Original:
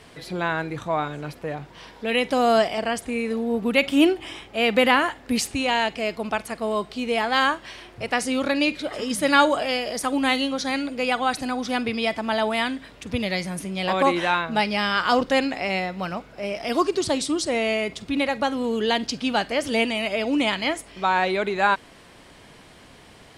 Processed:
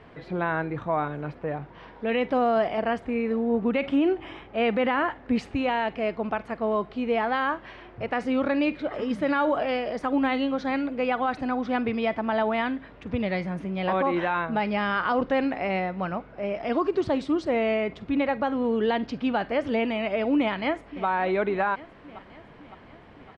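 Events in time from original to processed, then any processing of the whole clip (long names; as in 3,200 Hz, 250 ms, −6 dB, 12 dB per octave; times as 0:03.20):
0:20.36–0:21.06: delay throw 560 ms, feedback 65%, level −16 dB
whole clip: low-pass filter 1,800 Hz 12 dB per octave; brickwall limiter −15.5 dBFS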